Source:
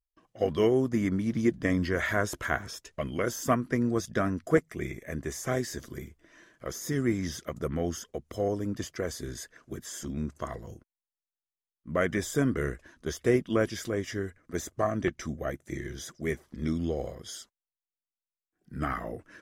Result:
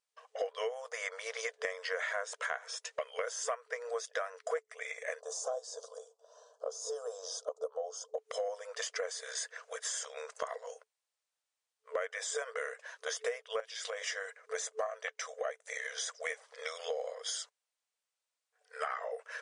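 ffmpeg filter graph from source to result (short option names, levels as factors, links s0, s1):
-filter_complex "[0:a]asettb=1/sr,asplit=3[s0][s1][s2];[s0]atrim=end=5.204[s3];[s1]atrim=start=5.2:end=8.18,asetpts=PTS-STARTPTS,afade=t=in:d=0.004:c=qsin,afade=t=out:st=2.976:d=0.004:c=qsin,asuperstop=centerf=2100:order=4:qfactor=0.52,aemphasis=mode=reproduction:type=50kf[s4];[s2]atrim=start=8.176[s5];[s3][s4]acrossfade=d=0.004:c1=hsin:c2=qsin[s6];[s6][s5]acrossfade=d=0.004:c1=qsin:c2=hsin,asettb=1/sr,asplit=3[s7][s8][s9];[s7]atrim=end=13.604[s10];[s8]atrim=start=13.6:end=14.02,asetpts=PTS-STARTPTS,afade=t=in:d=0.004:c=qsin,afade=t=out:st=0.416:d=0.004:c=qsin,highpass=f=440:w=0.5412,highpass=f=440:w=1.3066,equalizer=f=3500:w=1.1:g=7,acompressor=threshold=0.0126:ratio=8:attack=3.2:release=140:knee=1:detection=peak[s11];[s9]atrim=start=14.016[s12];[s10][s11]acrossfade=d=0.004:c1=hsin:c2=qsin[s13];[s13][s12]acrossfade=d=0.004:c1=qsin:c2=hsin,afftfilt=real='re*between(b*sr/4096,440,9900)':imag='im*between(b*sr/4096,440,9900)':win_size=4096:overlap=0.75,acompressor=threshold=0.00631:ratio=5,volume=2.82"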